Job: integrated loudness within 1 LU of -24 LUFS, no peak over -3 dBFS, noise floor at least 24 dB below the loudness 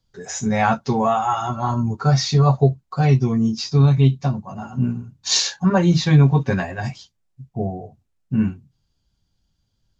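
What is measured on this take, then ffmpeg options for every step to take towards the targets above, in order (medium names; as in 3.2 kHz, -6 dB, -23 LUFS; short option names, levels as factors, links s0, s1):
loudness -19.5 LUFS; peak level -3.5 dBFS; loudness target -24.0 LUFS
-> -af "volume=0.596"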